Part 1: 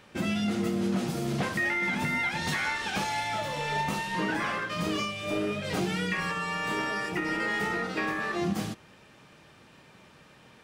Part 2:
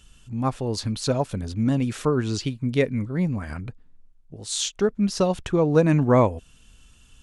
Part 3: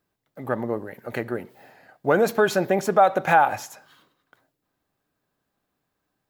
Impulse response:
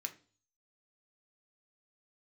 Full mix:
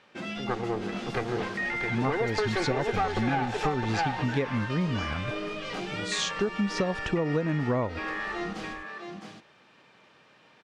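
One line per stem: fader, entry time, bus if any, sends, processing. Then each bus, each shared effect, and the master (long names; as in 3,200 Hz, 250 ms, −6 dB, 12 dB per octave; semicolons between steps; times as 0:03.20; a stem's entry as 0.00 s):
−2.5 dB, 0.00 s, no send, echo send −5.5 dB, high-pass filter 380 Hz 6 dB per octave
−0.5 dB, 1.60 s, no send, no echo send, no processing
−3.5 dB, 0.00 s, no send, echo send −4.5 dB, lower of the sound and its delayed copy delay 2.5 ms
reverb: not used
echo: single-tap delay 662 ms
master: low-pass filter 5,100 Hz 12 dB per octave; downward compressor 12 to 1, threshold −23 dBFS, peak gain reduction 11.5 dB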